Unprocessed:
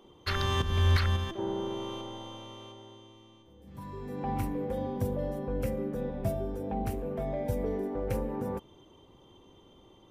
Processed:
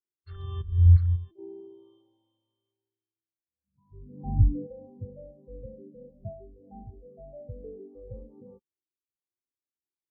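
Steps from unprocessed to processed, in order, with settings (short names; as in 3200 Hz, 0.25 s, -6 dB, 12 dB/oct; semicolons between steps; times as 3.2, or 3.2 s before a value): one diode to ground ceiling -20 dBFS; 3.91–4.67 tilt -2.5 dB/oct; spectral expander 2.5:1; gain +5.5 dB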